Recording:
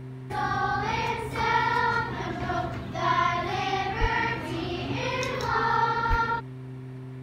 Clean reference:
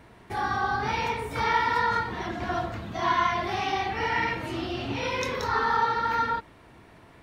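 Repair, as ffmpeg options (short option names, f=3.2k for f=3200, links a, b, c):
-filter_complex "[0:a]bandreject=f=129:t=h:w=4,bandreject=f=258:t=h:w=4,bandreject=f=387:t=h:w=4,asplit=3[a][b][c];[a]afade=t=out:st=4:d=0.02[d];[b]highpass=f=140:w=0.5412,highpass=f=140:w=1.3066,afade=t=in:st=4:d=0.02,afade=t=out:st=4.12:d=0.02[e];[c]afade=t=in:st=4.12:d=0.02[f];[d][e][f]amix=inputs=3:normalize=0,asplit=3[g][h][i];[g]afade=t=out:st=6.09:d=0.02[j];[h]highpass=f=140:w=0.5412,highpass=f=140:w=1.3066,afade=t=in:st=6.09:d=0.02,afade=t=out:st=6.21:d=0.02[k];[i]afade=t=in:st=6.21:d=0.02[l];[j][k][l]amix=inputs=3:normalize=0"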